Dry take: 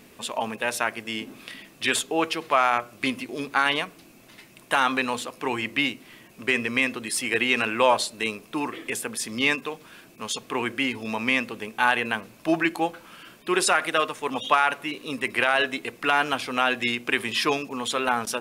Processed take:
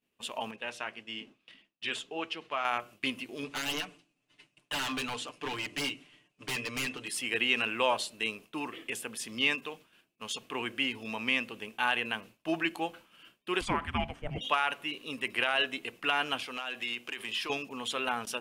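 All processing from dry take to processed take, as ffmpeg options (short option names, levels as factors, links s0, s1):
-filter_complex "[0:a]asettb=1/sr,asplit=3[s0][s1][s2];[s0]atrim=end=0.514[s3];[s1]atrim=start=0.51:end=2.65,asetpts=PTS-STARTPTS,afade=t=in:d=0.004:c=qsin,afade=t=out:st=2.136:d=0.004:c=qsin,lowpass=6400,flanger=delay=3.1:depth=3.5:regen=-70:speed=1.7:shape=sinusoidal[s4];[s2]atrim=start=2.646[s5];[s3][s4]acrossfade=d=0.004:c1=hsin:c2=qsin[s6];[s6][s5]acrossfade=d=0.004:c1=qsin:c2=hsin,asettb=1/sr,asplit=3[s7][s8][s9];[s7]atrim=end=3.424[s10];[s8]atrim=start=3.42:end=7.08,asetpts=PTS-STARTPTS,afade=t=in:d=0.004:c=qsin,afade=t=out:st=3.656:d=0.004:c=qsin,lowpass=f=9400:w=0.5412,lowpass=f=9400:w=1.3066,aeval=exprs='0.0794*(abs(mod(val(0)/0.0794+3,4)-2)-1)':c=same,aecho=1:1:6.8:0.72,atrim=end_sample=161406[s11];[s9]atrim=start=7.076[s12];[s10][s11]acrossfade=d=0.004:c1=hsin:c2=qsin[s13];[s13][s12]acrossfade=d=0.004:c1=qsin:c2=hsin,asettb=1/sr,asplit=3[s14][s15][s16];[s14]atrim=end=13.614[s17];[s15]atrim=start=13.61:end=14.41,asetpts=PTS-STARTPTS,afade=t=in:d=0.004:c=qsin,afade=t=out:st=0.796:d=0.004:c=qsin,bass=f=250:g=7,treble=f=4000:g=-14,afreqshift=-410[s18];[s16]atrim=start=14.406[s19];[s17][s18]acrossfade=d=0.004:c1=hsin:c2=qsin[s20];[s20][s19]acrossfade=d=0.004:c1=qsin:c2=hsin,asettb=1/sr,asplit=3[s21][s22][s23];[s21]atrim=end=16.434[s24];[s22]atrim=start=16.43:end=17.5,asetpts=PTS-STARTPTS,afade=t=in:d=0.004:c=qsin,afade=t=out:st=1.066:d=0.004:c=qsin,lowshelf=f=270:g=-9.5,acompressor=threshold=0.0631:ratio=10:attack=3.2:release=140:knee=1:detection=peak,asoftclip=type=hard:threshold=0.0841[s25];[s23]atrim=start=17.496[s26];[s24][s25]acrossfade=d=0.004:c1=hsin:c2=qsin[s27];[s27][s26]acrossfade=d=0.004:c1=qsin:c2=hsin,equalizer=f=2900:t=o:w=0.36:g=8.5,agate=range=0.0224:threshold=0.0158:ratio=3:detection=peak,volume=0.355"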